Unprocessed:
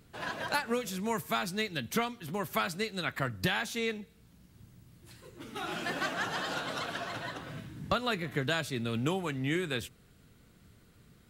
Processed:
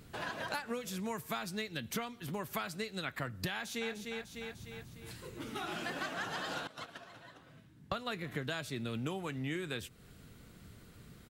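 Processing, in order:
0:03.51–0:03.91: delay throw 300 ms, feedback 45%, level −7.5 dB
0:06.67–0:08.18: noise gate −33 dBFS, range −20 dB
downward compressor 2.5 to 1, threshold −45 dBFS, peak gain reduction 13.5 dB
level +4.5 dB

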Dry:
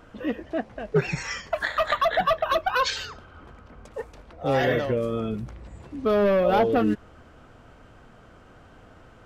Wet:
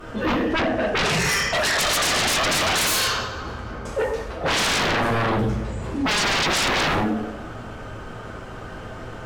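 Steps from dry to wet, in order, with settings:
coupled-rooms reverb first 0.64 s, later 1.6 s, DRR −8.5 dB
sine wavefolder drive 11 dB, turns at −9.5 dBFS
level −8.5 dB

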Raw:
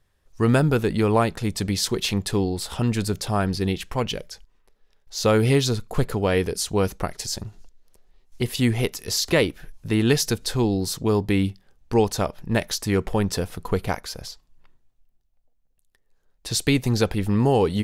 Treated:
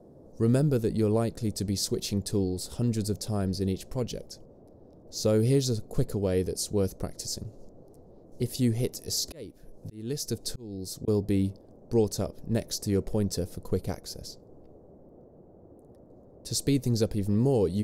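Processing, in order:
noise in a band 53–760 Hz −47 dBFS
flat-topped bell 1,600 Hz −12.5 dB 2.5 octaves
0:08.65–0:11.08: volume swells 582 ms
level −4.5 dB

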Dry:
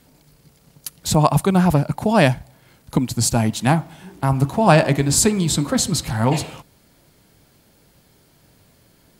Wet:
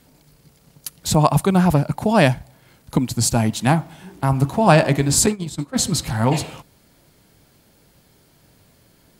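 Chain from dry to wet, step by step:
0:05.26–0:05.79: noise gate −17 dBFS, range −20 dB

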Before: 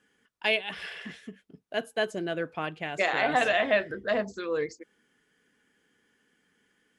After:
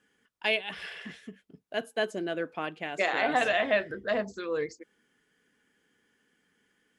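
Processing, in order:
0:01.82–0:03.37: low shelf with overshoot 170 Hz −7 dB, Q 1.5
level −1.5 dB

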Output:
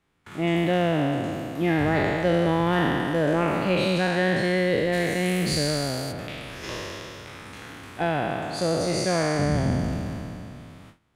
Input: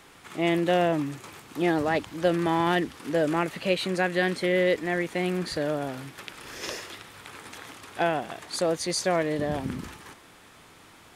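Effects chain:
peak hold with a decay on every bin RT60 2.76 s
noise gate with hold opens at −36 dBFS
bass and treble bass +10 dB, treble −5 dB, from 0:04.92 treble +9 dB, from 0:06.11 treble −6 dB
level −3 dB

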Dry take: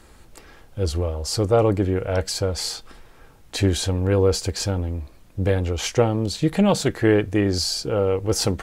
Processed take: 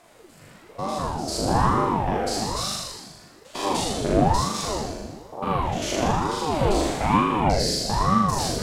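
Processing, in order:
spectrum averaged block by block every 100 ms
parametric band 84 Hz −7.5 dB 1.8 octaves
on a send: flutter between parallel walls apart 6.9 metres, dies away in 1.3 s
on the sum: ring modulator whose carrier an LFO sweeps 410 Hz, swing 70%, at 1.1 Hz

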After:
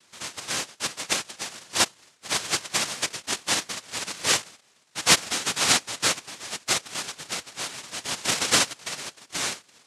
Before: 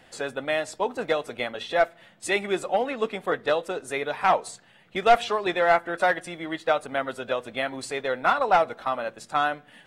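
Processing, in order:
phaser swept by the level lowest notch 360 Hz, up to 2,500 Hz, full sweep at −17 dBFS
cochlear-implant simulation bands 1
gate on every frequency bin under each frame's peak −25 dB strong

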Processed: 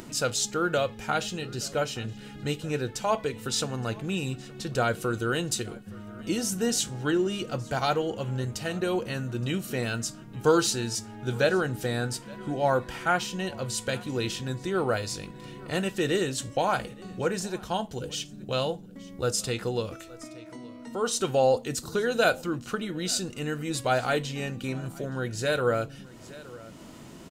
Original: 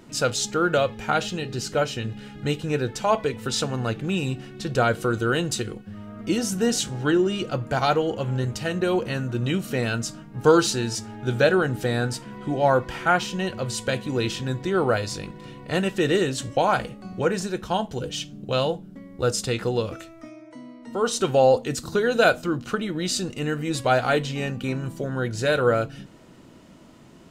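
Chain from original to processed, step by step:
high-shelf EQ 6,000 Hz +7.5 dB
on a send: single-tap delay 870 ms −23.5 dB
on the sum: upward compression, threshold −31 dBFS
level −5 dB

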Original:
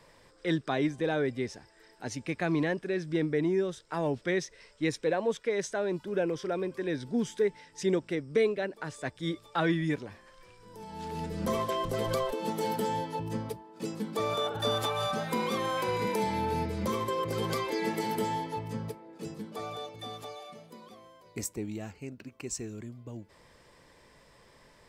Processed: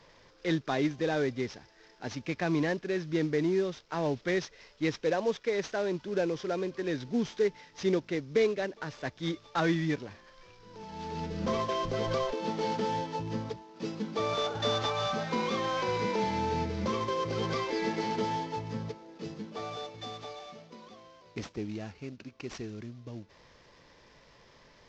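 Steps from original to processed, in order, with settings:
variable-slope delta modulation 32 kbit/s

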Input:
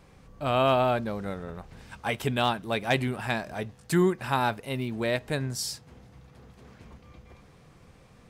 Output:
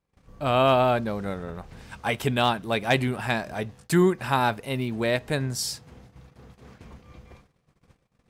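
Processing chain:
noise gate −51 dBFS, range −29 dB
level +3 dB

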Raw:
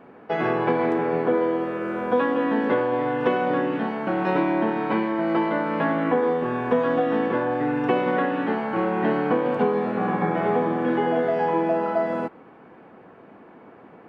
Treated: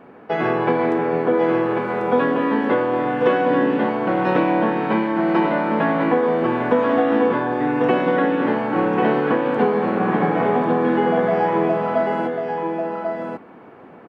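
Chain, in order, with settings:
single-tap delay 1,093 ms −5 dB
level +3 dB

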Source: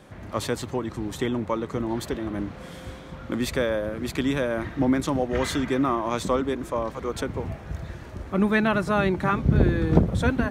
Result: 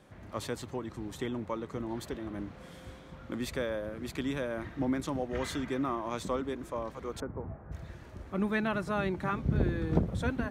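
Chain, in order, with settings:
0:07.20–0:07.72: low-pass filter 1,500 Hz 24 dB per octave
level −9 dB

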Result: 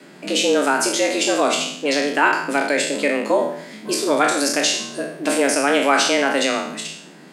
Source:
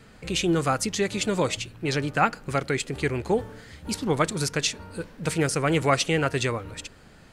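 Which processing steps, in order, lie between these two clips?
peak hold with a decay on every bin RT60 0.64 s
in parallel at −2 dB: brickwall limiter −15.5 dBFS, peak gain reduction 11 dB
on the sum: frequency shifter +140 Hz

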